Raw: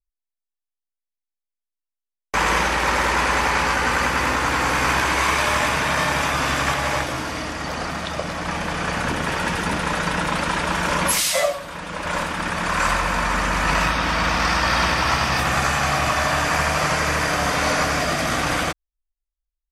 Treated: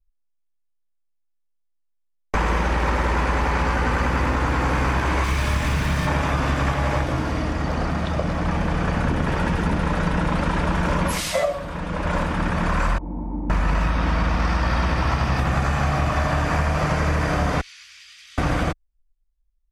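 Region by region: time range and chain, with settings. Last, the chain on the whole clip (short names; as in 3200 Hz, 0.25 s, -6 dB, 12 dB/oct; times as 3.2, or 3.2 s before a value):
5.24–6.07 zero-crossing step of -22.5 dBFS + bell 690 Hz -9.5 dB 2.9 oct
12.98–13.5 vocal tract filter u + doubler 17 ms -11.5 dB
17.61–18.38 inverse Chebyshev high-pass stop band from 690 Hz, stop band 70 dB + tilt -4.5 dB/oct
whole clip: tilt -3 dB/oct; compressor, threshold -17 dBFS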